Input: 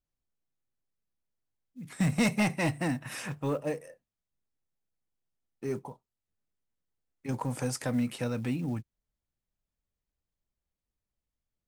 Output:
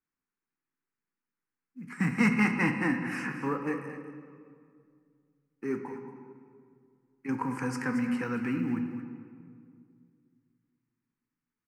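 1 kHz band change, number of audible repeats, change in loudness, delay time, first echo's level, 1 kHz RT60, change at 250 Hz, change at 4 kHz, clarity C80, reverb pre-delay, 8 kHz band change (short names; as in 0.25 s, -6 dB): +3.0 dB, 1, +1.5 dB, 0.226 s, -12.0 dB, 2.1 s, +2.5 dB, -6.5 dB, 6.5 dB, 14 ms, -8.5 dB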